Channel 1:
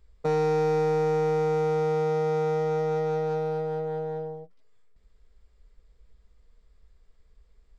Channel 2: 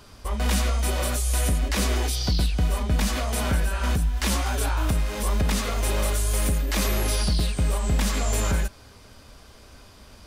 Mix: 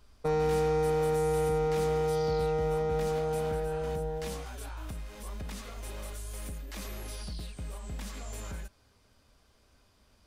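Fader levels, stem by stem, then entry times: -3.5 dB, -16.5 dB; 0.00 s, 0.00 s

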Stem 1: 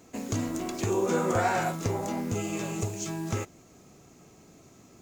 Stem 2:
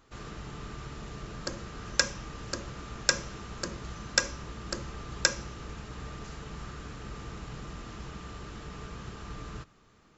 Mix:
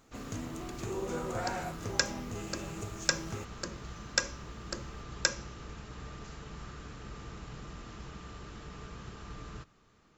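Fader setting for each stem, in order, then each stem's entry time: -10.0 dB, -3.5 dB; 0.00 s, 0.00 s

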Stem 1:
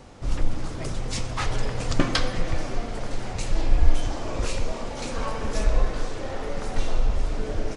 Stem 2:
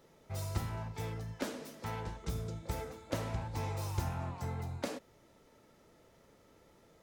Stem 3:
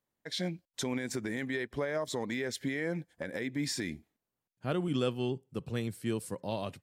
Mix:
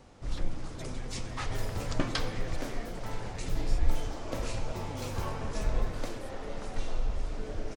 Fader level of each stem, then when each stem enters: -8.5 dB, -2.5 dB, -14.0 dB; 0.00 s, 1.20 s, 0.00 s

